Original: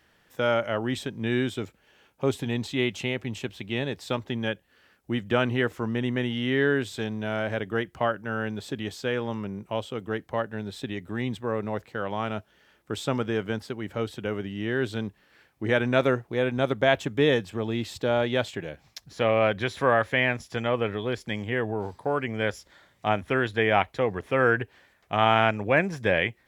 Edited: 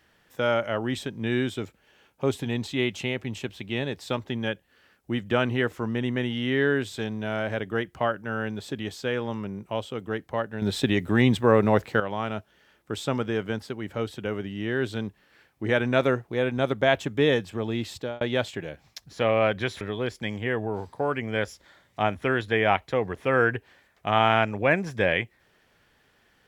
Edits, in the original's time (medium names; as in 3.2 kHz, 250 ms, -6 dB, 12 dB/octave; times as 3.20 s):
10.62–12.00 s: gain +10 dB
17.93–18.21 s: fade out
19.81–20.87 s: delete